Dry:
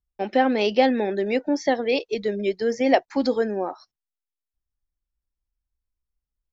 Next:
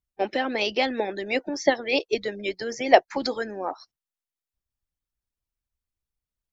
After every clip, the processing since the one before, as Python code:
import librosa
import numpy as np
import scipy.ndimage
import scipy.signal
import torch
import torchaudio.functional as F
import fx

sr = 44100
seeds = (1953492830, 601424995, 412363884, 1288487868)

y = fx.hpss(x, sr, part='harmonic', gain_db=-13)
y = y * 10.0 ** (4.0 / 20.0)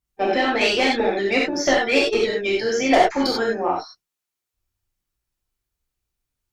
y = fx.tube_stage(x, sr, drive_db=16.0, bias=0.2)
y = fx.rev_gated(y, sr, seeds[0], gate_ms=120, shape='flat', drr_db=-4.5)
y = y * 10.0 ** (3.0 / 20.0)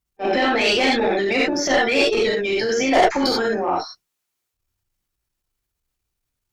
y = fx.transient(x, sr, attack_db=-10, sustain_db=4)
y = y * 10.0 ** (2.0 / 20.0)